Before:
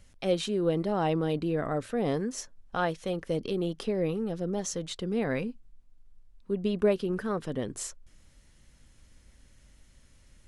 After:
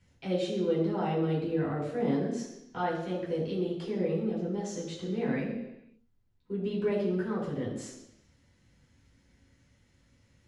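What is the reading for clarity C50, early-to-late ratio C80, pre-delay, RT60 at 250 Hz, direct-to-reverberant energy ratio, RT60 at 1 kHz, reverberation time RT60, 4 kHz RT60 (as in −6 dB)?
4.5 dB, 6.5 dB, 3 ms, 1.0 s, −7.5 dB, 0.90 s, 0.90 s, 0.95 s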